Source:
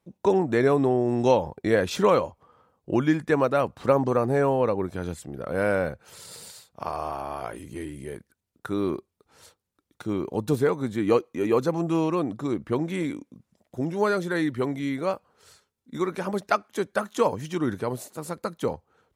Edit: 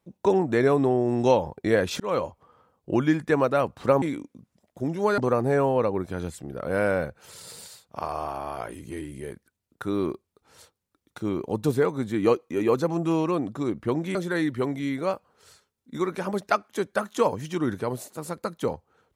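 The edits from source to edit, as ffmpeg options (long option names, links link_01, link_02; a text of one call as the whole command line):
ffmpeg -i in.wav -filter_complex "[0:a]asplit=5[link_01][link_02][link_03][link_04][link_05];[link_01]atrim=end=2,asetpts=PTS-STARTPTS,afade=type=out:start_time=1.996:duration=0.004:curve=hsin[link_06];[link_02]atrim=start=2:end=4.022,asetpts=PTS-STARTPTS,afade=type=in:duration=0.25[link_07];[link_03]atrim=start=12.988:end=14.152[link_08];[link_04]atrim=start=4.018:end=12.992[link_09];[link_05]atrim=start=14.148[link_10];[link_06][link_07]concat=n=2:v=0:a=1[link_11];[link_11][link_08]acrossfade=duration=0.004:curve1=hsin:curve2=hsin[link_12];[link_12][link_09]acrossfade=duration=0.004:curve1=hsin:curve2=hsin[link_13];[link_13][link_10]acrossfade=duration=0.004:curve1=hsin:curve2=hsin" out.wav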